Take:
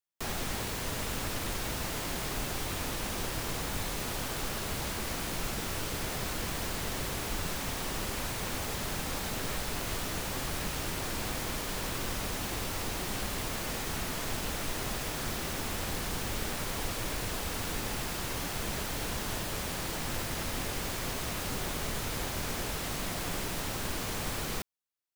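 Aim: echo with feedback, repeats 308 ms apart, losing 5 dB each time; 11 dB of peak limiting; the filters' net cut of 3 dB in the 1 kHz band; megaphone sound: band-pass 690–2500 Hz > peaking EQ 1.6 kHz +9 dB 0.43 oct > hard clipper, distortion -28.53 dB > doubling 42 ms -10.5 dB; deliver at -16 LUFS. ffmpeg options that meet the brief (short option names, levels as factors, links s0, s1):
-filter_complex "[0:a]equalizer=f=1000:t=o:g=-4.5,alimiter=level_in=2.37:limit=0.0631:level=0:latency=1,volume=0.422,highpass=690,lowpass=2500,equalizer=f=1600:t=o:w=0.43:g=9,aecho=1:1:308|616|924|1232|1540|1848|2156:0.562|0.315|0.176|0.0988|0.0553|0.031|0.0173,asoftclip=type=hard:threshold=0.0158,asplit=2[s0][s1];[s1]adelay=42,volume=0.299[s2];[s0][s2]amix=inputs=2:normalize=0,volume=22.4"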